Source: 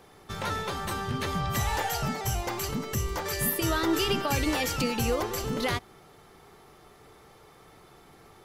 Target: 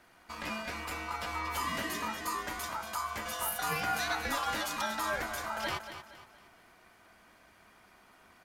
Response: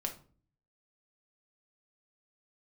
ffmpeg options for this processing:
-af "aeval=exprs='val(0)*sin(2*PI*1100*n/s)':channel_layout=same,aecho=1:1:233|466|699|932:0.299|0.113|0.0431|0.0164,volume=-4dB"

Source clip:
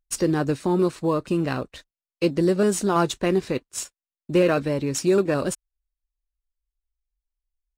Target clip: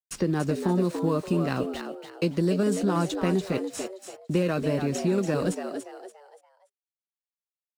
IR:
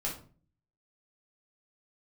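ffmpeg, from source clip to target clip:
-filter_complex "[0:a]equalizer=frequency=180:width_type=o:width=0.44:gain=8.5,asplit=2[link_01][link_02];[link_02]acompressor=threshold=-27dB:ratio=6,volume=-2.5dB[link_03];[link_01][link_03]amix=inputs=2:normalize=0,aeval=exprs='val(0)*gte(abs(val(0)),0.00794)':channel_layout=same,acrossover=split=260|3600[link_04][link_05][link_06];[link_04]acompressor=threshold=-23dB:ratio=4[link_07];[link_05]acompressor=threshold=-20dB:ratio=4[link_08];[link_06]acompressor=threshold=-35dB:ratio=4[link_09];[link_07][link_08][link_09]amix=inputs=3:normalize=0,asplit=5[link_10][link_11][link_12][link_13][link_14];[link_11]adelay=287,afreqshift=97,volume=-7.5dB[link_15];[link_12]adelay=574,afreqshift=194,volume=-16.9dB[link_16];[link_13]adelay=861,afreqshift=291,volume=-26.2dB[link_17];[link_14]adelay=1148,afreqshift=388,volume=-35.6dB[link_18];[link_10][link_15][link_16][link_17][link_18]amix=inputs=5:normalize=0,volume=-4.5dB"

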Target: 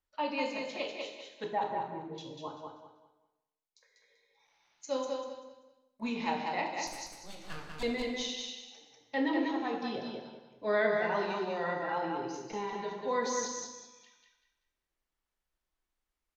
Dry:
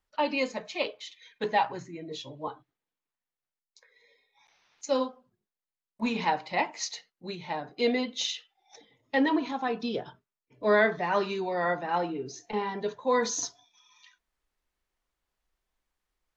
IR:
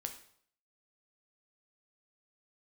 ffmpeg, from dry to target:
-filter_complex "[0:a]asettb=1/sr,asplit=3[link_01][link_02][link_03];[link_01]atrim=end=1.444[link_04];[link_02]atrim=start=1.44:end=2.18,asetpts=PTS-STARTPTS,afade=type=in:duration=0.004:curve=qsin,afade=type=out:start_time=0.736:duration=0.004:curve=qsin,lowpass=1300[link_05];[link_03]atrim=start=2.176[link_06];[link_04][link_05]acrossfade=duration=0.004:curve1=hsin:curve2=qsin[link_07];[link_07][link_06]acrossfade=duration=0.004:curve1=qsin:curve2=hsin,asettb=1/sr,asplit=3[link_08][link_09][link_10];[link_08]atrim=end=6.874[link_11];[link_09]atrim=start=6.87:end=7.83,asetpts=PTS-STARTPTS,afade=type=in:duration=0.004:curve=qsin,afade=type=out:start_time=0.956:duration=0.004:curve=qsin,aeval=exprs='abs(val(0))':channel_layout=same[link_12];[link_10]atrim=start=7.826[link_13];[link_11][link_12]acrossfade=duration=0.004:curve1=hsin:curve2=qsin[link_14];[link_14][link_13]acrossfade=duration=0.004:curve1=qsin:curve2=hsin,aecho=1:1:194|388|582|776:0.631|0.183|0.0531|0.0154[link_15];[1:a]atrim=start_sample=2205,asetrate=29106,aresample=44100[link_16];[link_15][link_16]afir=irnorm=-1:irlink=0,volume=-7dB"

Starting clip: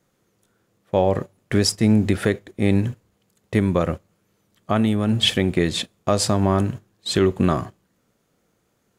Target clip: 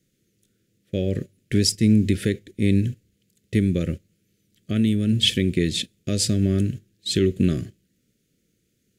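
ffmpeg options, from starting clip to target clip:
ffmpeg -i in.wav -af "asuperstop=centerf=920:order=4:qfactor=0.5" out.wav

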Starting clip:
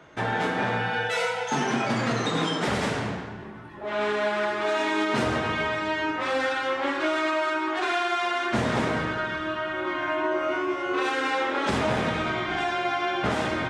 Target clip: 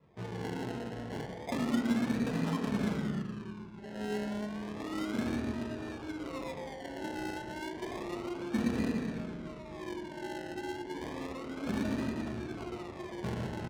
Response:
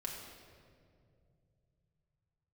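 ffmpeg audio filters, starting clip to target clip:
-filter_complex "[0:a]equalizer=frequency=9200:width=0.62:gain=-5.5,flanger=delay=1.7:depth=3.8:regen=-21:speed=0.15:shape=triangular,firequalizer=gain_entry='entry(260,0);entry(790,-22);entry(5700,12)':delay=0.05:min_phase=1,asplit=2[link_01][link_02];[link_02]adelay=115,lowpass=frequency=1200:poles=1,volume=-5.5dB,asplit=2[link_03][link_04];[link_04]adelay=115,lowpass=frequency=1200:poles=1,volume=0.44,asplit=2[link_05][link_06];[link_06]adelay=115,lowpass=frequency=1200:poles=1,volume=0.44,asplit=2[link_07][link_08];[link_08]adelay=115,lowpass=frequency=1200:poles=1,volume=0.44,asplit=2[link_09][link_10];[link_10]adelay=115,lowpass=frequency=1200:poles=1,volume=0.44[link_11];[link_01][link_03][link_05][link_07][link_09][link_11]amix=inputs=6:normalize=0,acrusher=samples=29:mix=1:aa=0.000001:lfo=1:lforange=17.4:lforate=0.31,asplit=2[link_12][link_13];[1:a]atrim=start_sample=2205,afade=type=out:start_time=0.37:duration=0.01,atrim=end_sample=16758[link_14];[link_13][link_14]afir=irnorm=-1:irlink=0,volume=0.5dB[link_15];[link_12][link_15]amix=inputs=2:normalize=0,adynamicsmooth=sensitivity=4.5:basefreq=3200,highpass=58,volume=-6.5dB"

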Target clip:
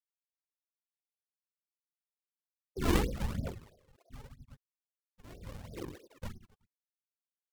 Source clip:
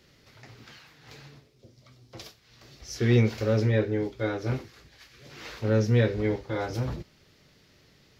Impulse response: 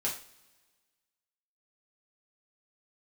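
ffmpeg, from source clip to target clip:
-filter_complex "[0:a]afftfilt=real='re*gte(hypot(re,im),0.398)':imag='im*gte(hypot(re,im),0.398)':win_size=1024:overlap=0.75,superequalizer=10b=0.708:12b=0.501:13b=0.708,acrossover=split=480|630[link_01][link_02][link_03];[link_03]alimiter=level_in=17.5dB:limit=-24dB:level=0:latency=1:release=42,volume=-17.5dB[link_04];[link_01][link_02][link_04]amix=inputs=3:normalize=0,afftfilt=real='hypot(re,im)*cos(2*PI*random(0))':imag='hypot(re,im)*sin(2*PI*random(1))':win_size=512:overlap=0.75,aecho=1:1:50|112.5|190.6|288.3|410.4:0.631|0.398|0.251|0.158|0.1,acrusher=samples=41:mix=1:aa=0.000001:lfo=1:lforange=65.6:lforate=2.8,aphaser=in_gain=1:out_gain=1:delay=3.3:decay=0.53:speed=0.77:type=triangular,asetrate=48000,aresample=44100,aeval=exprs='val(0)*pow(10,-20*(0.5-0.5*cos(2*PI*0.64*n/s))/20)':channel_layout=same,volume=-1.5dB"

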